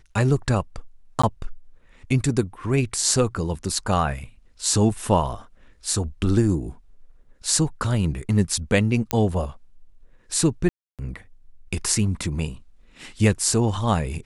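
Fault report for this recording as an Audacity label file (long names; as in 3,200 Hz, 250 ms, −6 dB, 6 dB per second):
1.220000	1.240000	drop-out 15 ms
9.110000	9.110000	click −5 dBFS
10.690000	10.990000	drop-out 297 ms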